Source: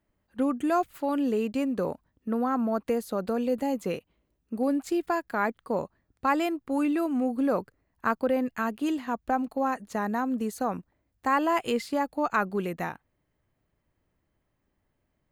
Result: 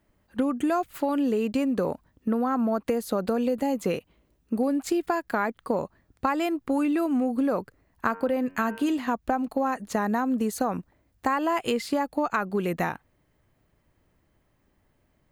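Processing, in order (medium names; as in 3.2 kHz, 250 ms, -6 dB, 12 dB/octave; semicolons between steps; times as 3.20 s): 8.10–8.99 s: de-hum 91.94 Hz, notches 33; compression, threshold -30 dBFS, peak gain reduction 11 dB; trim +8 dB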